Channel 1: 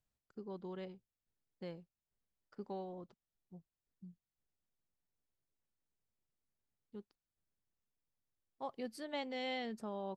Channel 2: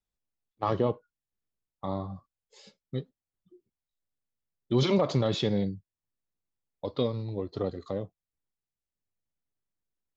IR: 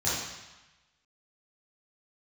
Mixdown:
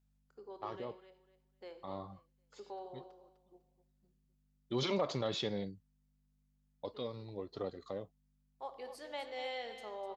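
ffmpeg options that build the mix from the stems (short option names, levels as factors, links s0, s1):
-filter_complex "[0:a]highpass=f=370:w=0.5412,highpass=f=370:w=1.3066,aeval=exprs='val(0)+0.000224*(sin(2*PI*50*n/s)+sin(2*PI*2*50*n/s)/2+sin(2*PI*3*50*n/s)/3+sin(2*PI*4*50*n/s)/4+sin(2*PI*5*50*n/s)/5)':c=same,volume=0.75,asplit=4[s0][s1][s2][s3];[s1]volume=0.133[s4];[s2]volume=0.355[s5];[1:a]lowshelf=f=300:g=-11,volume=0.562[s6];[s3]apad=whole_len=448323[s7];[s6][s7]sidechaincompress=threshold=0.00126:ratio=4:attack=20:release=335[s8];[2:a]atrim=start_sample=2205[s9];[s4][s9]afir=irnorm=-1:irlink=0[s10];[s5]aecho=0:1:252|504|756|1008:1|0.22|0.0484|0.0106[s11];[s0][s8][s10][s11]amix=inputs=4:normalize=0"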